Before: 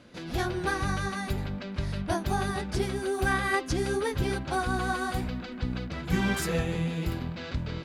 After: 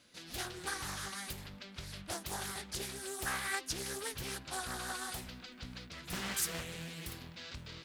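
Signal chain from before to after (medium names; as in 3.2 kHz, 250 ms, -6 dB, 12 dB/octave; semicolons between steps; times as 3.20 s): pre-emphasis filter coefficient 0.9; loudspeaker Doppler distortion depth 0.82 ms; trim +3 dB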